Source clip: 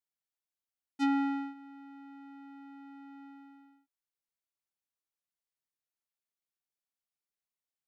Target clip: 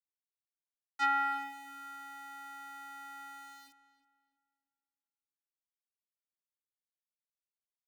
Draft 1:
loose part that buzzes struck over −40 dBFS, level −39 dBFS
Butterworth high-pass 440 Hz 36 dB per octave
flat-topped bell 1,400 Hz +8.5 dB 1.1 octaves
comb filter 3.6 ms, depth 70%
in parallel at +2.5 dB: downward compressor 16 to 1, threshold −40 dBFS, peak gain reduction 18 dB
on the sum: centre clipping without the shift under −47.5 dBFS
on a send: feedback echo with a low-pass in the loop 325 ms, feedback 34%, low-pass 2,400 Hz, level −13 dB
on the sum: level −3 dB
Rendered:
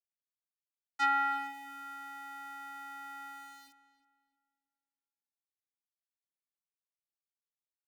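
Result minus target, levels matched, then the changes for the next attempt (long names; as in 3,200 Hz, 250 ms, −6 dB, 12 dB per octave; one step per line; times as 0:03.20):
downward compressor: peak gain reduction −8.5 dB
change: downward compressor 16 to 1, threshold −49 dBFS, peak gain reduction 26.5 dB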